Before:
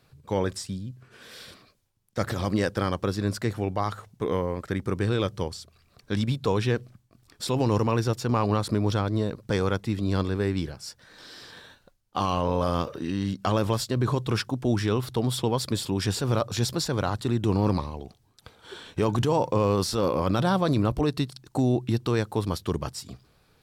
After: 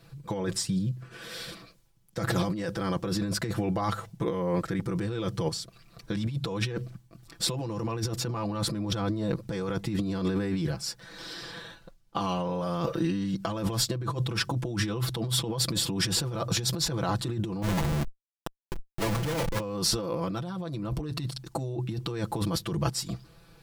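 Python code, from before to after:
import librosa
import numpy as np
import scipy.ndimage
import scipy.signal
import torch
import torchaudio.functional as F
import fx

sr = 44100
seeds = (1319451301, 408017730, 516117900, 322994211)

y = fx.high_shelf(x, sr, hz=7900.0, db=-5.0, at=(11.33, 12.2))
y = fx.schmitt(y, sr, flips_db=-34.0, at=(17.62, 19.6))
y = fx.low_shelf(y, sr, hz=210.0, db=4.5)
y = y + 0.92 * np.pad(y, (int(6.0 * sr / 1000.0), 0))[:len(y)]
y = fx.over_compress(y, sr, threshold_db=-27.0, ratio=-1.0)
y = y * librosa.db_to_amplitude(-2.5)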